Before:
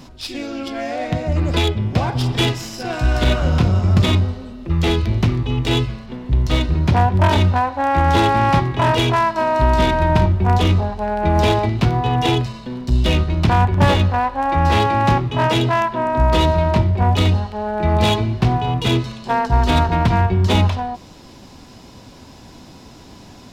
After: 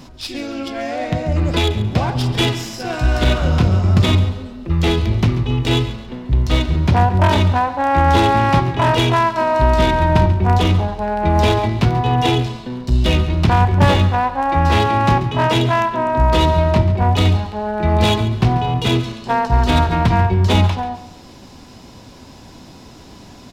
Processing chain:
repeating echo 138 ms, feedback 33%, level −14.5 dB
level +1 dB

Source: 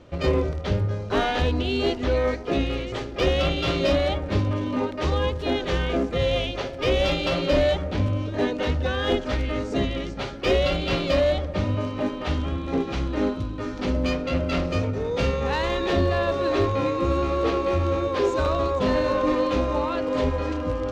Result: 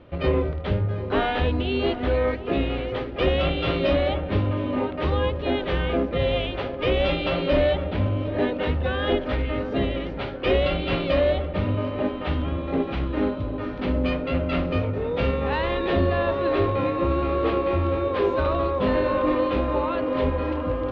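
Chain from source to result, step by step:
low-pass filter 3,500 Hz 24 dB per octave
tape delay 743 ms, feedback 83%, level −12 dB, low-pass 1,300 Hz

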